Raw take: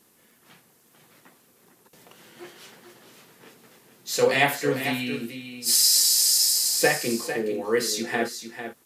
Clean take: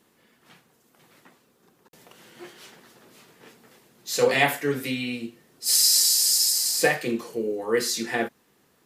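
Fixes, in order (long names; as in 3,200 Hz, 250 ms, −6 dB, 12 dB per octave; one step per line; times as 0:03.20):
click removal
downward expander −52 dBFS, range −21 dB
echo removal 449 ms −9.5 dB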